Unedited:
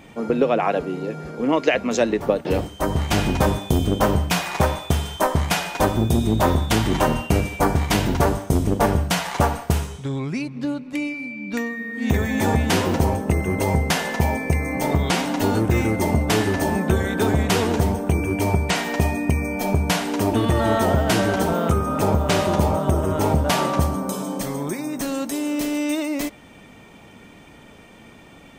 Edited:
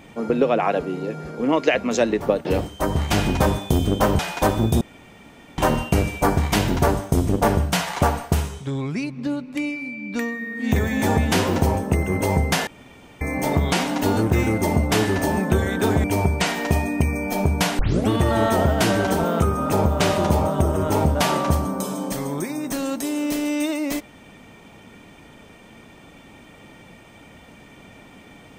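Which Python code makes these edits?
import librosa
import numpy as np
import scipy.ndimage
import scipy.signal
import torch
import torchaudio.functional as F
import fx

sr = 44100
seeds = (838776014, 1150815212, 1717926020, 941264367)

y = fx.edit(x, sr, fx.cut(start_s=4.19, length_s=1.38),
    fx.room_tone_fill(start_s=6.19, length_s=0.77),
    fx.room_tone_fill(start_s=14.05, length_s=0.54),
    fx.cut(start_s=17.42, length_s=0.91),
    fx.tape_start(start_s=20.08, length_s=0.3), tone=tone)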